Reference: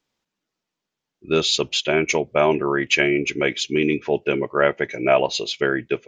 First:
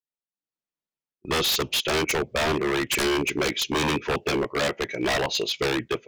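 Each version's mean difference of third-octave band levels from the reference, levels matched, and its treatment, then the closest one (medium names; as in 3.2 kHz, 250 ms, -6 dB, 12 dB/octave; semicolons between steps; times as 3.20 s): 10.5 dB: gate -43 dBFS, range -26 dB; treble shelf 3.4 kHz -2 dB; level rider gain up to 14 dB; wavefolder -16 dBFS; trim -2 dB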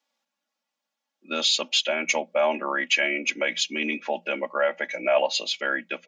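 5.5 dB: peak limiter -10.5 dBFS, peak gain reduction 8 dB; rippled Chebyshev high-pass 170 Hz, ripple 9 dB; peaking EQ 280 Hz -13 dB 2.1 oct; comb 3.6 ms, depth 73%; trim +6.5 dB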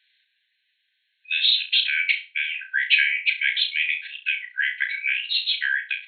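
18.0 dB: in parallel at +2 dB: peak limiter -10 dBFS, peak gain reduction 7.5 dB; on the sum: brick-wall FIR band-pass 1.5–4.3 kHz; flutter echo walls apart 5.8 m, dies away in 0.28 s; three bands compressed up and down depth 40%; trim -3 dB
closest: second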